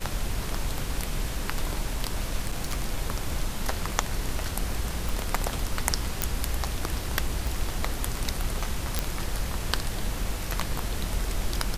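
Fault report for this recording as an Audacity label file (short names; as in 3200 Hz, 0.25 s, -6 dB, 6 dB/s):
2.410000	2.820000	clipped -22.5 dBFS
5.090000	5.090000	pop
6.220000	6.220000	pop -6 dBFS
7.470000	7.470000	pop
8.990000	8.990000	pop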